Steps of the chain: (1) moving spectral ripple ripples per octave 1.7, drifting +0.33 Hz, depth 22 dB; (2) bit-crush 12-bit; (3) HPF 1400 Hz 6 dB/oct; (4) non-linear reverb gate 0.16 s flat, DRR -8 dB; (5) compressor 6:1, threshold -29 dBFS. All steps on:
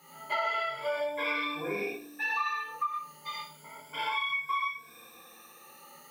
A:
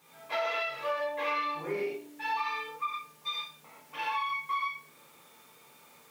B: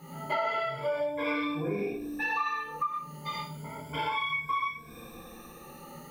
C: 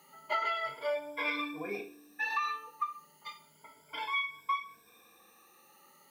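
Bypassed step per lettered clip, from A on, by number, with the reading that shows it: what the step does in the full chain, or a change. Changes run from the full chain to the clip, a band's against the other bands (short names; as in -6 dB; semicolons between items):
1, 250 Hz band -3.0 dB; 3, 125 Hz band +14.0 dB; 4, momentary loudness spread change -5 LU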